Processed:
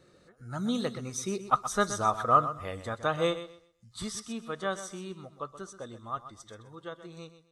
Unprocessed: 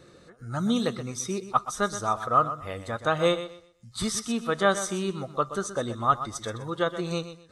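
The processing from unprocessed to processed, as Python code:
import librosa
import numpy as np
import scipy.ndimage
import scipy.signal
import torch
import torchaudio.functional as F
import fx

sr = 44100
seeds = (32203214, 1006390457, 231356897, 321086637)

y = fx.doppler_pass(x, sr, speed_mps=7, closest_m=6.1, pass_at_s=2.0)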